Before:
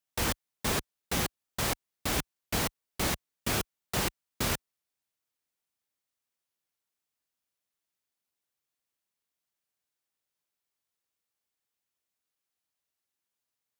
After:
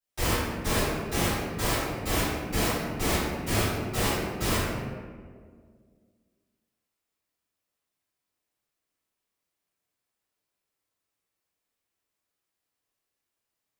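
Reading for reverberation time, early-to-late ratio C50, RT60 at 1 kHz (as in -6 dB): 1.8 s, -3.0 dB, 1.6 s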